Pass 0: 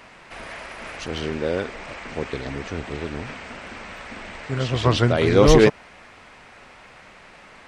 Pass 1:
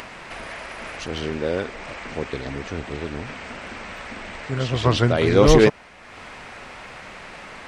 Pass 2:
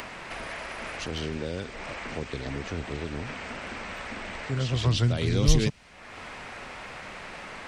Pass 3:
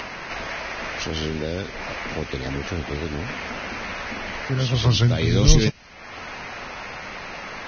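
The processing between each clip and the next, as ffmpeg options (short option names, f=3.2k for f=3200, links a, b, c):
-af "acompressor=mode=upward:threshold=-30dB:ratio=2.5"
-filter_complex "[0:a]acrossover=split=200|3000[a][b][c];[b]acompressor=threshold=-31dB:ratio=6[d];[a][d][c]amix=inputs=3:normalize=0,volume=-1.5dB"
-af "volume=5.5dB" -ar 16000 -c:a libvorbis -b:a 16k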